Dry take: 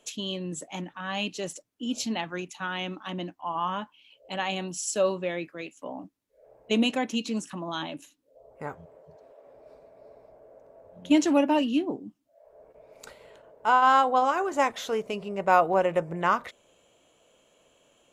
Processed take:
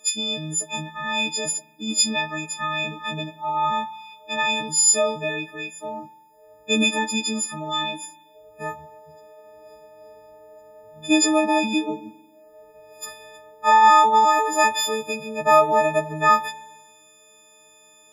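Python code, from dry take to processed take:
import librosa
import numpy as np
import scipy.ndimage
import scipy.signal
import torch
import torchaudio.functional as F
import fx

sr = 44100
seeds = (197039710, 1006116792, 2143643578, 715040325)

y = fx.freq_snap(x, sr, grid_st=6)
y = fx.rev_spring(y, sr, rt60_s=1.2, pass_ms=(44,), chirp_ms=35, drr_db=13.5)
y = y * 10.0 ** (2.0 / 20.0)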